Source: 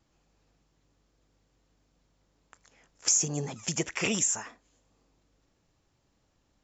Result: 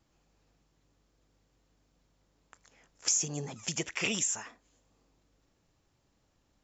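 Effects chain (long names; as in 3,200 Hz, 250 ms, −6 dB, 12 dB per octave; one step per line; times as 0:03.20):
dynamic equaliser 3,300 Hz, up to +6 dB, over −43 dBFS, Q 0.96
in parallel at −1 dB: downward compressor, threshold −40 dBFS, peak gain reduction 19.5 dB
on the sum: level −6.5 dB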